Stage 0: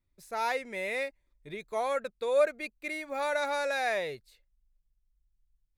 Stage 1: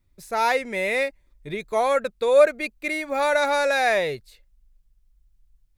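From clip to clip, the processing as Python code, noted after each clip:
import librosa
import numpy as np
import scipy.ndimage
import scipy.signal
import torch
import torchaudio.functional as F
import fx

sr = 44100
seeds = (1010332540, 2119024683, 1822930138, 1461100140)

y = fx.low_shelf(x, sr, hz=220.0, db=4.0)
y = y * 10.0 ** (9.0 / 20.0)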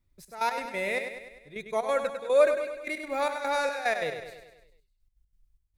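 y = fx.step_gate(x, sr, bpm=183, pattern='xxx..x.x.xxx..', floor_db=-12.0, edge_ms=4.5)
y = fx.echo_feedback(y, sr, ms=100, feedback_pct=55, wet_db=-8.0)
y = y * 10.0 ** (-5.5 / 20.0)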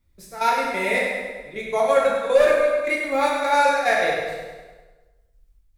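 y = np.clip(x, -10.0 ** (-18.5 / 20.0), 10.0 ** (-18.5 / 20.0))
y = fx.rev_plate(y, sr, seeds[0], rt60_s=1.2, hf_ratio=0.65, predelay_ms=0, drr_db=-3.5)
y = y * 10.0 ** (4.0 / 20.0)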